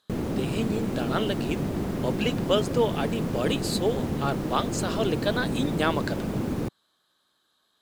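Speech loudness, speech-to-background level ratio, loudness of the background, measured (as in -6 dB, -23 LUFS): -29.5 LUFS, 0.0 dB, -29.5 LUFS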